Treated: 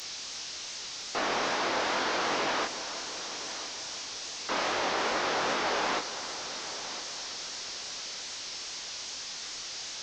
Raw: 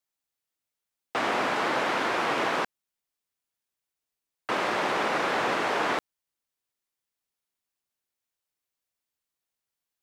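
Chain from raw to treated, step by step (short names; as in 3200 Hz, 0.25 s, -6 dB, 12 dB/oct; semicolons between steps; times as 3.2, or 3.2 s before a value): delta modulation 32 kbps, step -36 dBFS; tone controls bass -5 dB, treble +14 dB; chorus 2.5 Hz, delay 19 ms, depth 7.7 ms; multi-head echo 0.337 s, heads first and third, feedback 49%, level -14.5 dB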